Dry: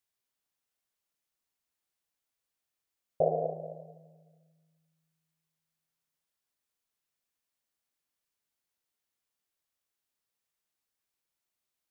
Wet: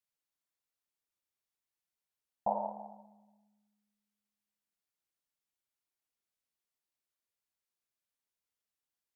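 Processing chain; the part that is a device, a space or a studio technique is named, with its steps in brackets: nightcore (varispeed +30%); gain -5 dB

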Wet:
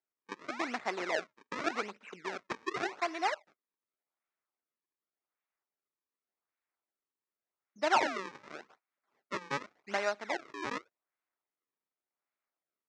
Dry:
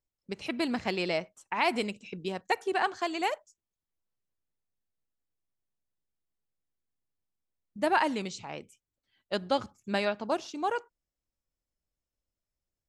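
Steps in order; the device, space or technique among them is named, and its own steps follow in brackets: dynamic EQ 2900 Hz, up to -5 dB, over -48 dBFS, Q 1.1; notch 2200 Hz; 10.12–10.55 bell 1200 Hz -3.5 dB -> -14.5 dB 1.2 oct; circuit-bent sampling toy (decimation with a swept rate 36×, swing 160% 0.87 Hz; speaker cabinet 480–5700 Hz, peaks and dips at 510 Hz -5 dB, 1300 Hz +4 dB, 2100 Hz +5 dB, 3100 Hz -6 dB, 4500 Hz -4 dB)

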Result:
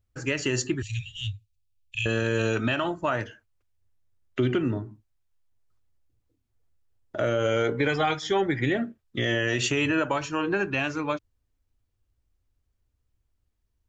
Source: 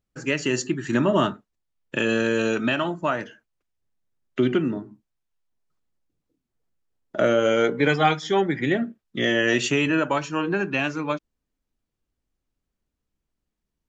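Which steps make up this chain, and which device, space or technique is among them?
0.82–2.06 Chebyshev band-stop 110–2400 Hz, order 5; car stereo with a boomy subwoofer (resonant low shelf 130 Hz +7.5 dB, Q 3; limiter -15 dBFS, peak gain reduction 8 dB)

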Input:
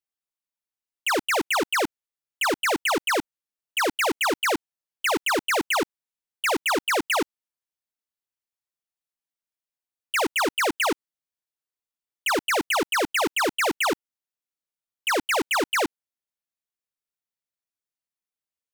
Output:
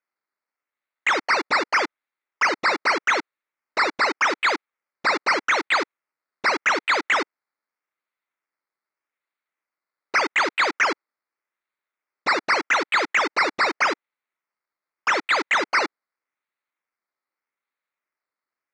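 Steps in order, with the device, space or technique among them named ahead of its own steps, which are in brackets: circuit-bent sampling toy (decimation with a swept rate 11×, swing 60% 0.83 Hz; speaker cabinet 410–5600 Hz, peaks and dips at 460 Hz -4 dB, 710 Hz -5 dB, 1300 Hz +4 dB, 2100 Hz +7 dB, 3000 Hz -7 dB, 4400 Hz +3 dB); gain +2.5 dB

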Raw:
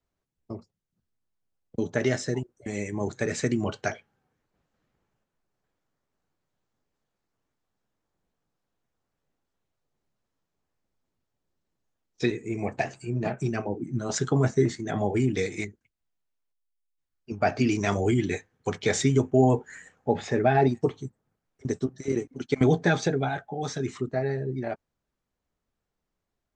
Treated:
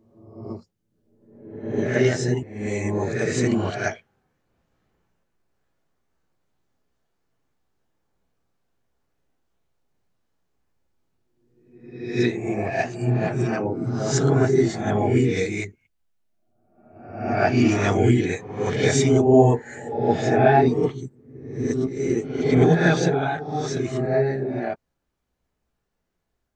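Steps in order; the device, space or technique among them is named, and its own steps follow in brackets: reverse reverb (reverse; reverb RT60 0.90 s, pre-delay 11 ms, DRR -1 dB; reverse); gain +1.5 dB

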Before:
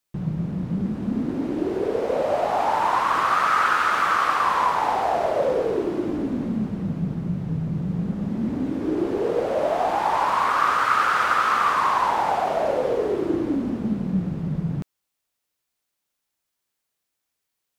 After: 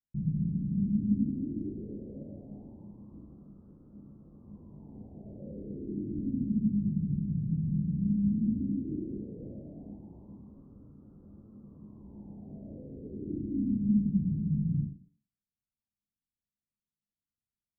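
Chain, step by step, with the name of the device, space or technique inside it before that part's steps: club heard from the street (limiter -15.5 dBFS, peak gain reduction 8 dB; LPF 240 Hz 24 dB/oct; reverb RT60 0.50 s, pre-delay 17 ms, DRR -3 dB); gain -6.5 dB

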